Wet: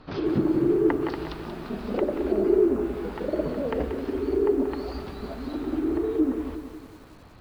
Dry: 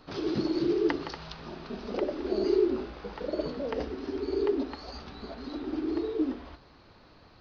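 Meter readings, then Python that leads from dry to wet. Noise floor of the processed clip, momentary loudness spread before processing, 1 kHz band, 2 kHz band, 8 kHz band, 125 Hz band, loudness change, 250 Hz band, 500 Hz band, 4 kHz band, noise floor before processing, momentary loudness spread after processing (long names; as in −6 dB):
−48 dBFS, 15 LU, +4.5 dB, +2.5 dB, can't be measured, +8.0 dB, +5.0 dB, +6.0 dB, +5.0 dB, −3.5 dB, −56 dBFS, 13 LU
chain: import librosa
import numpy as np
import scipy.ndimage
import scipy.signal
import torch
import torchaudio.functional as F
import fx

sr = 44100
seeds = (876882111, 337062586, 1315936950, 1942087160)

y = fx.bass_treble(x, sr, bass_db=4, treble_db=-10)
y = fx.env_lowpass_down(y, sr, base_hz=1700.0, full_db=-24.0)
y = fx.echo_crushed(y, sr, ms=183, feedback_pct=55, bits=9, wet_db=-9)
y = y * librosa.db_to_amplitude(4.0)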